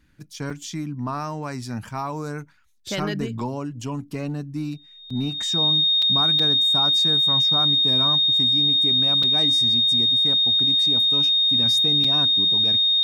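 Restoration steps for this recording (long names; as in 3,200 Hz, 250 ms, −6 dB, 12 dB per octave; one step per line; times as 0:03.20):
notch filter 3,700 Hz, Q 30
repair the gap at 0:00.50/0:05.10/0:06.02/0:06.39/0:09.23/0:12.04, 4.3 ms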